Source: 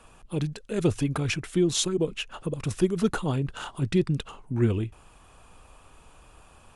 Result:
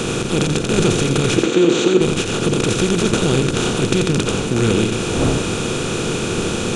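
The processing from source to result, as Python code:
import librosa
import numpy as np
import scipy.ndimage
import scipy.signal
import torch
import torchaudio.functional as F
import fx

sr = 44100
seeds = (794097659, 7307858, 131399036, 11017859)

y = fx.bin_compress(x, sr, power=0.2)
y = fx.dmg_wind(y, sr, seeds[0], corner_hz=350.0, level_db=-31.0)
y = fx.cabinet(y, sr, low_hz=200.0, low_slope=12, high_hz=7000.0, hz=(330.0, 490.0, 5200.0), db=(8, 4, -8), at=(1.37, 2.01))
y = y + 10.0 ** (-6.0 / 20.0) * np.pad(y, (int(86 * sr / 1000.0), 0))[:len(y)]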